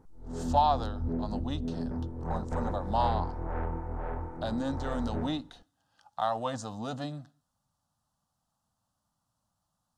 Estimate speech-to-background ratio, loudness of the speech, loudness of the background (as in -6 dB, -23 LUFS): 2.5 dB, -33.5 LUFS, -36.0 LUFS